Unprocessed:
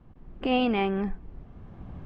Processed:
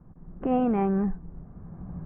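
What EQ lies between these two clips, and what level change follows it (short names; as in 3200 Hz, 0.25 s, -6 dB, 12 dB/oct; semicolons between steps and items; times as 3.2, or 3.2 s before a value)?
LPF 1600 Hz 24 dB/oct; air absorption 56 m; bell 170 Hz +11.5 dB 0.33 oct; 0.0 dB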